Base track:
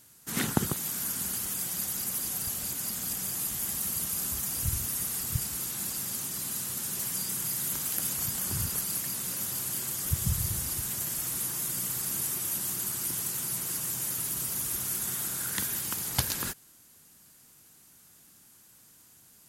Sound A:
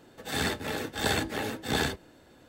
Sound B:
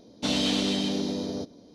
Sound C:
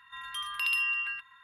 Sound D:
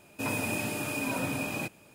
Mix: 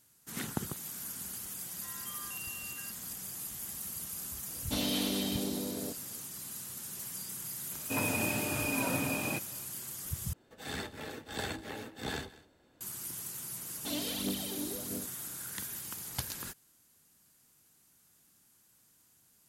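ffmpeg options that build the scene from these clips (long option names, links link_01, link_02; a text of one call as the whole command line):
ffmpeg -i bed.wav -i cue0.wav -i cue1.wav -i cue2.wav -i cue3.wav -filter_complex "[2:a]asplit=2[link_01][link_02];[0:a]volume=-9dB[link_03];[3:a]asplit=2[link_04][link_05];[link_05]highpass=frequency=720:poles=1,volume=16dB,asoftclip=type=tanh:threshold=-19dB[link_06];[link_04][link_06]amix=inputs=2:normalize=0,lowpass=frequency=1000:poles=1,volume=-6dB[link_07];[1:a]aecho=1:1:198:0.106[link_08];[link_02]aphaser=in_gain=1:out_gain=1:delay=3.5:decay=0.64:speed=1.5:type=triangular[link_09];[link_03]asplit=2[link_10][link_11];[link_10]atrim=end=10.334[link_12];[link_08]atrim=end=2.48,asetpts=PTS-STARTPTS,volume=-10dB[link_13];[link_11]atrim=start=12.806[link_14];[link_07]atrim=end=1.43,asetpts=PTS-STARTPTS,volume=-14dB,afade=type=in:duration=0.004:curve=hsin,afade=type=out:start_time=1.426:duration=0.004:curve=hsin,adelay=1710[link_15];[link_01]atrim=end=1.74,asetpts=PTS-STARTPTS,volume=-7dB,afade=type=in:duration=0.004:curve=hsin,afade=type=out:start_time=1.736:duration=0.004:curve=hsin,adelay=4480[link_16];[4:a]atrim=end=1.94,asetpts=PTS-STARTPTS,volume=-1dB,afade=type=in:duration=0.004:curve=hsin,afade=type=out:start_time=1.936:duration=0.004:curve=hsin,adelay=7710[link_17];[link_09]atrim=end=1.74,asetpts=PTS-STARTPTS,volume=-13dB,afade=type=in:duration=0.004:curve=hsin,afade=type=out:start_time=1.736:duration=0.004:curve=hsin,adelay=13620[link_18];[link_12][link_13]acrossfade=duration=0.004:curve1=hsin:curve2=hsin[link_19];[link_19][link_14]acrossfade=duration=0.004:curve1=hsin:curve2=hsin[link_20];[link_20][link_15][link_16][link_17][link_18]amix=inputs=5:normalize=0" out.wav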